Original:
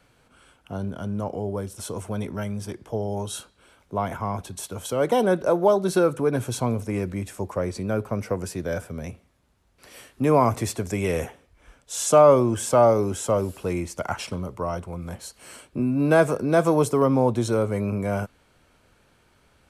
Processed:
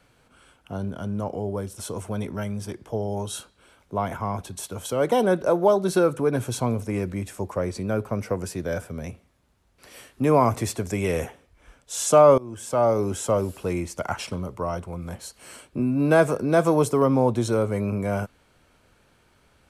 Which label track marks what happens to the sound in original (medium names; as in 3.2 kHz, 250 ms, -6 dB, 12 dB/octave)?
12.380000	13.110000	fade in, from -23 dB